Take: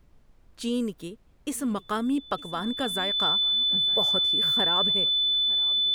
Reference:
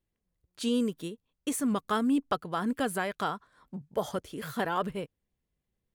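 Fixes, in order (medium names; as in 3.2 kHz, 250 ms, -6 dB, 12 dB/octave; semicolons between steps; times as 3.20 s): band-stop 3.5 kHz, Q 30; expander -48 dBFS, range -21 dB; inverse comb 909 ms -22.5 dB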